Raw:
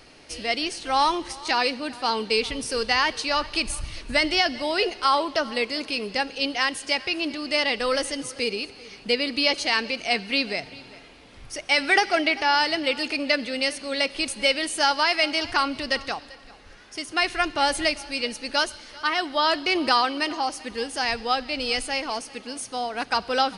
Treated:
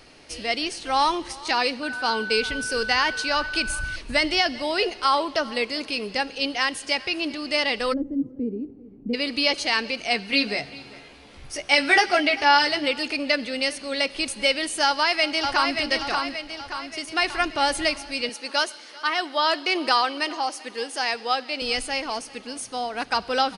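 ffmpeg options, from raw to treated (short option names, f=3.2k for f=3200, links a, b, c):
-filter_complex "[0:a]asettb=1/sr,asplit=3[a][b][c];[a]atrim=end=1.834[d];[b]atrim=start=1.83:end=3.96,asetpts=PTS-STARTPTS,afade=t=in:d=0.004:c=qsin,afade=t=out:st=2.126:d=0.004:c=qsin,aeval=exprs='val(0)+0.0355*sin(2*PI*1500*n/s)':c=same[e];[c]atrim=start=3.956[f];[d][e]acrossfade=d=0.004:c1=hsin:c2=qsin[g];[g][f]acrossfade=d=0.004:c1=qsin:c2=hsin,asplit=3[h][i][j];[h]afade=t=out:st=7.92:d=0.02[k];[i]lowpass=f=270:t=q:w=3.1,afade=t=in:st=7.92:d=0.02,afade=t=out:st=9.13:d=0.02[l];[j]afade=t=in:st=9.13:d=0.02[m];[k][l][m]amix=inputs=3:normalize=0,asettb=1/sr,asplit=3[n][o][p];[n]atrim=end=10.314[q];[o]atrim=start=10.31:end=12.88,asetpts=PTS-STARTPTS,afade=t=in:d=0.004:c=qsin,afade=t=out:st=2.566:d=0.004:c=qsin,asplit=2[r][s];[s]adelay=14,volume=-3dB[t];[r][t]amix=inputs=2:normalize=0,atrim=end_sample=113337[u];[p]atrim=start=12.876[v];[q][u]acrossfade=d=0.004:c1=hsin:c2=qsin[w];[w][v]acrossfade=d=0.004:c1=qsin:c2=hsin,asplit=2[x][y];[y]afade=t=in:st=14.85:d=0.01,afade=t=out:st=15.78:d=0.01,aecho=0:1:580|1160|1740|2320|2900|3480:0.595662|0.297831|0.148916|0.0744578|0.0372289|0.0186144[z];[x][z]amix=inputs=2:normalize=0,asettb=1/sr,asplit=3[aa][ab][ac];[aa]atrim=end=18.294[ad];[ab]atrim=start=18.29:end=21.62,asetpts=PTS-STARTPTS,afade=t=in:d=0.004:c=qsin,afade=t=out:st=3.326:d=0.004:c=qsin,highpass=310[ae];[ac]atrim=start=21.616[af];[ad][ae]acrossfade=d=0.004:c1=hsin:c2=qsin[ag];[ag][af]acrossfade=d=0.004:c1=qsin:c2=hsin"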